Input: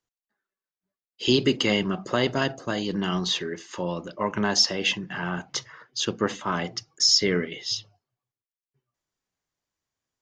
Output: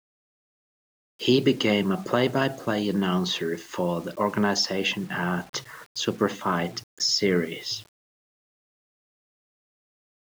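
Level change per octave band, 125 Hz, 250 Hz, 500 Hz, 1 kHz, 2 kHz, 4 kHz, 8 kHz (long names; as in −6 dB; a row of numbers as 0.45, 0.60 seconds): +2.0, +2.0, +2.0, +2.0, 0.0, −3.5, −4.5 decibels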